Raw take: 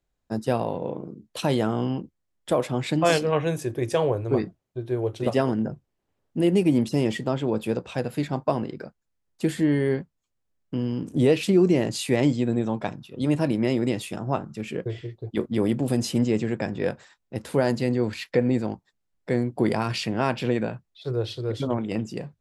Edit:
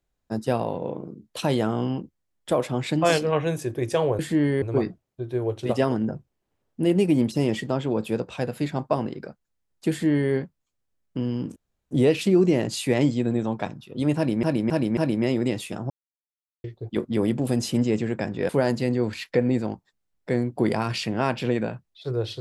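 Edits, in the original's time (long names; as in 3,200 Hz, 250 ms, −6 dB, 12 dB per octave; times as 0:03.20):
0:09.47–0:09.90: duplicate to 0:04.19
0:11.13: splice in room tone 0.35 s
0:13.38–0:13.65: repeat, 4 plays
0:14.31–0:15.05: silence
0:16.90–0:17.49: remove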